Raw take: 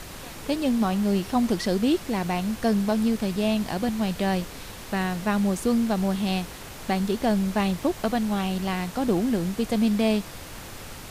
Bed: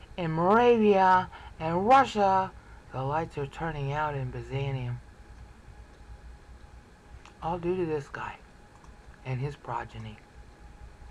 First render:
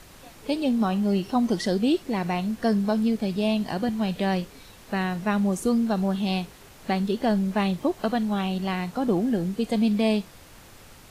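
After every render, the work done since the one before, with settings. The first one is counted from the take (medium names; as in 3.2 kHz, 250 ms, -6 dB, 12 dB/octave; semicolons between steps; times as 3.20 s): noise print and reduce 9 dB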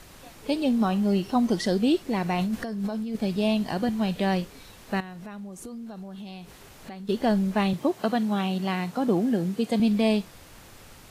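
2.38–3.15 s: compressor with a negative ratio -29 dBFS; 5.00–7.09 s: compression 5:1, threshold -38 dBFS; 7.73–9.80 s: high-pass 100 Hz 24 dB/octave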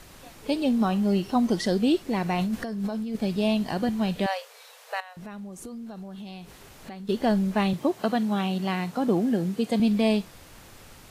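4.26–5.17 s: brick-wall FIR high-pass 430 Hz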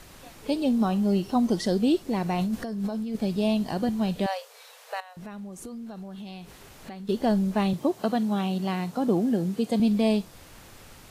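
dynamic bell 2 kHz, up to -5 dB, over -45 dBFS, Q 0.87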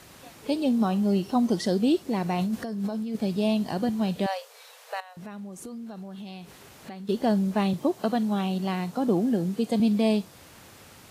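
high-pass 84 Hz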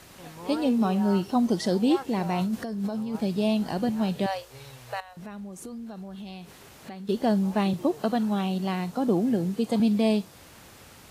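add bed -16 dB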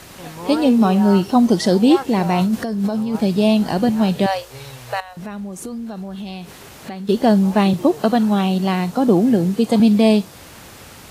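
trim +9.5 dB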